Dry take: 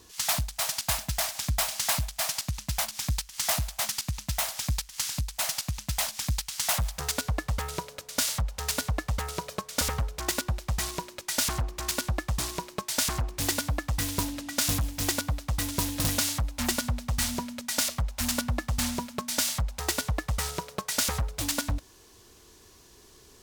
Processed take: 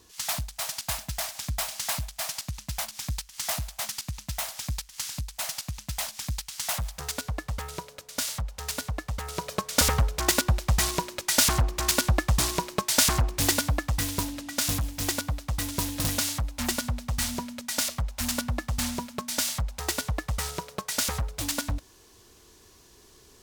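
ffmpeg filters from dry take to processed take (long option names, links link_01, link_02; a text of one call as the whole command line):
ffmpeg -i in.wav -af "volume=6dB,afade=type=in:start_time=9.22:duration=0.5:silence=0.354813,afade=type=out:start_time=13.08:duration=1.17:silence=0.473151" out.wav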